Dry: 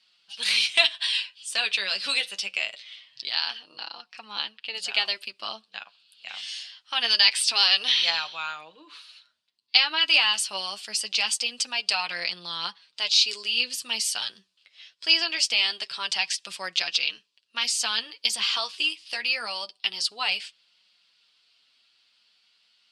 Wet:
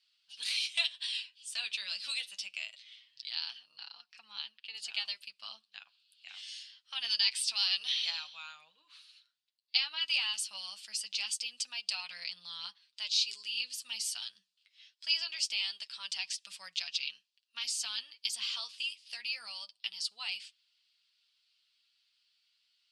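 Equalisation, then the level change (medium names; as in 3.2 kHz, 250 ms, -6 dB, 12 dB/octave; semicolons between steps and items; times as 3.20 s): dynamic bell 1.7 kHz, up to -4 dB, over -39 dBFS, Q 1.8; amplifier tone stack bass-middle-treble 5-5-5; peaking EQ 340 Hz -11.5 dB 0.49 oct; -2.5 dB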